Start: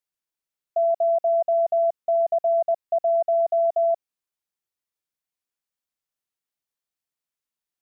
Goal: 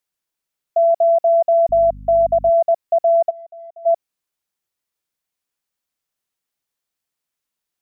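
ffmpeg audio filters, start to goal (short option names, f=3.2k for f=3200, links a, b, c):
-filter_complex "[0:a]asettb=1/sr,asplit=3[a][b][c];[a]atrim=end=1.694[d];[b]atrim=start=1.69:end=2.5,asetpts=PTS-STARTPTS,afade=t=in:d=0.004:c=qsin,afade=t=out:st=0.806:d=0.004:c=qsin,aeval=exprs='val(0)+0.00891*(sin(2*PI*50*n/s)+sin(2*PI*2*50*n/s)/2+sin(2*PI*3*50*n/s)/3+sin(2*PI*4*50*n/s)/4+sin(2*PI*5*50*n/s)/5)':c=same[e];[c]atrim=start=2.496[f];[d][e]acrossfade=d=0.004:c1=hsin:c2=qsin[g];[g][f]acrossfade=d=0.004:c1=qsin:c2=hsin,asplit=3[h][i][j];[h]afade=t=out:st=3.29:d=0.02[k];[i]agate=range=-23dB:threshold=-17dB:ratio=16:detection=peak,afade=t=in:st=3.29:d=0.02,afade=t=out:st=3.85:d=0.02[l];[j]afade=t=in:st=3.85:d=0.02[m];[k][l][m]amix=inputs=3:normalize=0,volume=6.5dB"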